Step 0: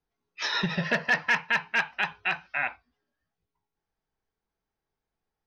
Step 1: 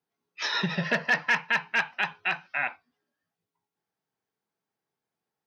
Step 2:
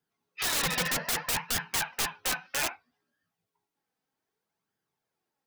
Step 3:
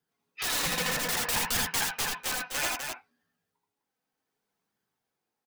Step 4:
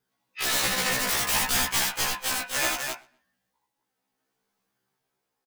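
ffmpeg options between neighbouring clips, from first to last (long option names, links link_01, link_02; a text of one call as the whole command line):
ffmpeg -i in.wav -af "highpass=frequency=120:width=0.5412,highpass=frequency=120:width=1.3066" out.wav
ffmpeg -i in.wav -af "aeval=exprs='(mod(16.8*val(0)+1,2)-1)/16.8':channel_layout=same,flanger=delay=0.6:depth=3.4:regen=45:speed=0.63:shape=sinusoidal,volume=6dB" out.wav
ffmpeg -i in.wav -af "aecho=1:1:79|83|93|246|254:0.562|0.562|0.141|0.178|0.447,tremolo=f=0.65:d=0.32" out.wav
ffmpeg -i in.wav -filter_complex "[0:a]asplit=2[link_01][link_02];[link_02]adelay=123,lowpass=frequency=4100:poles=1,volume=-23.5dB,asplit=2[link_03][link_04];[link_04]adelay=123,lowpass=frequency=4100:poles=1,volume=0.3[link_05];[link_01][link_03][link_05]amix=inputs=3:normalize=0,afftfilt=real='re*1.73*eq(mod(b,3),0)':imag='im*1.73*eq(mod(b,3),0)':win_size=2048:overlap=0.75,volume=6.5dB" out.wav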